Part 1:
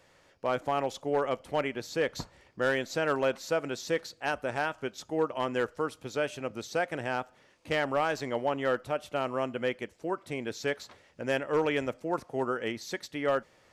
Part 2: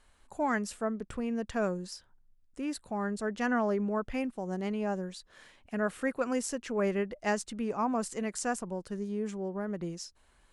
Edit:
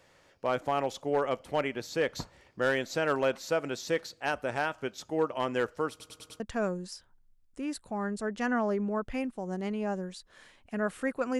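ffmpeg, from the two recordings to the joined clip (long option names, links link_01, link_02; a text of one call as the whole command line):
ffmpeg -i cue0.wav -i cue1.wav -filter_complex "[0:a]apad=whole_dur=11.39,atrim=end=11.39,asplit=5[link_01][link_02][link_03][link_04][link_05];[link_01]atrim=end=6.002[link_06];[link_02]atrim=start=5.898:end=6.002[link_07];[link_03]atrim=start=5.898:end=6.002[link_08];[link_04]atrim=start=5.898:end=6.002[link_09];[link_05]atrim=start=5.898:end=6.002[link_10];[1:a]atrim=start=1.398:end=6.39[link_11];[link_06][link_07]acrossfade=duration=0.004:curve1=hsin:curve2=hsin[link_12];[link_12][link_08]acrossfade=duration=0.004:curve1=hsin:curve2=hsin[link_13];[link_13][link_09]acrossfade=duration=0.004:curve1=hsin:curve2=hsin[link_14];[link_14][link_10]acrossfade=duration=0.004:curve1=hsin:curve2=hsin[link_15];[link_15][link_11]acrossfade=duration=0.004:curve1=hsin:curve2=hsin" out.wav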